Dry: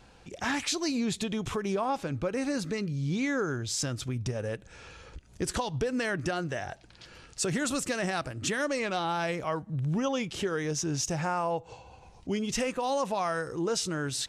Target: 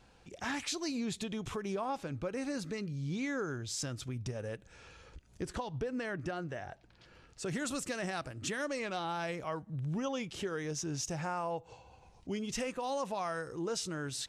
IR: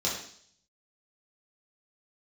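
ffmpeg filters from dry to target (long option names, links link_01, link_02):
-filter_complex "[0:a]asettb=1/sr,asplit=3[link_01][link_02][link_03];[link_01]atrim=end=5.424[link_04];[link_02]atrim=start=5.42:end=7.46,asetpts=PTS-STARTPTS,afade=type=in:duration=0.004:curve=qsin,afade=type=out:start_time=2.036:duration=0.004:curve=qsin,highshelf=frequency=3400:gain=-10[link_05];[link_03]atrim=start=7.456[link_06];[link_04][link_05]acrossfade=duration=0.004:curve1=hsin:curve2=qsin[link_07];[link_07][link_06]acrossfade=duration=0.004:curve1=qsin:curve2=hsin,volume=-6.5dB"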